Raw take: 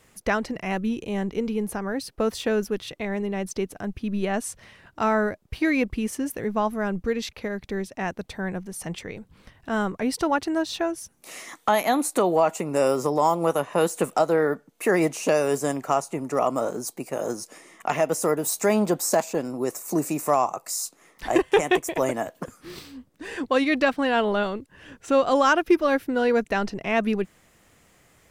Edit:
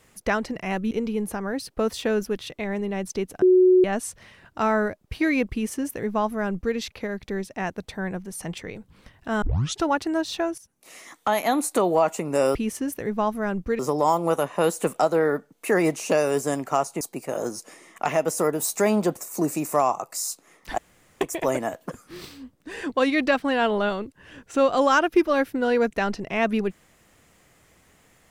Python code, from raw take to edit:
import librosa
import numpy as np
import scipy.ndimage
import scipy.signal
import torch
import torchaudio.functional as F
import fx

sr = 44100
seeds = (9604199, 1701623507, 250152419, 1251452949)

y = fx.edit(x, sr, fx.cut(start_s=0.91, length_s=0.41),
    fx.bleep(start_s=3.83, length_s=0.42, hz=368.0, db=-12.0),
    fx.duplicate(start_s=5.93, length_s=1.24, to_s=12.96),
    fx.tape_start(start_s=9.83, length_s=0.41),
    fx.fade_in_from(start_s=10.99, length_s=1.0, floor_db=-12.5),
    fx.cut(start_s=16.18, length_s=0.67),
    fx.cut(start_s=19.0, length_s=0.7),
    fx.room_tone_fill(start_s=21.32, length_s=0.43), tone=tone)